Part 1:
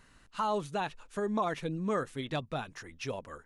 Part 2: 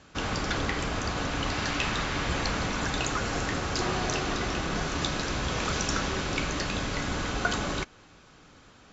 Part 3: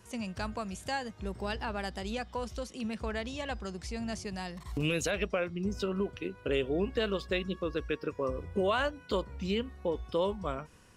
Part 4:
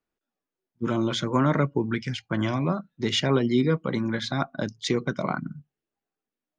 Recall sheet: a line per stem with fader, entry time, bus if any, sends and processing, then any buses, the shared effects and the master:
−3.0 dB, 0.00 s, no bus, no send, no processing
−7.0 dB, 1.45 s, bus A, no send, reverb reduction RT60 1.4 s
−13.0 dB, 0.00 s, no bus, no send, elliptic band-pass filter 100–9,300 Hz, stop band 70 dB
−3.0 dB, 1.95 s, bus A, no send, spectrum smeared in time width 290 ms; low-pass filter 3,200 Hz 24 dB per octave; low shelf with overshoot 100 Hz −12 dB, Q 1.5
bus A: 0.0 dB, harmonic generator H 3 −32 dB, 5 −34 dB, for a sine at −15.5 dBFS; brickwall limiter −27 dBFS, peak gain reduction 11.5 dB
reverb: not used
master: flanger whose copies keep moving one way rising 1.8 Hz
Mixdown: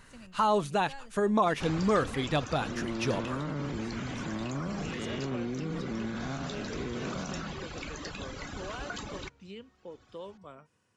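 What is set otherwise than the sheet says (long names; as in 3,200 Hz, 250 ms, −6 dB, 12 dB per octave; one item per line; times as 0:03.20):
stem 1 −3.0 dB → +5.5 dB
master: missing flanger whose copies keep moving one way rising 1.8 Hz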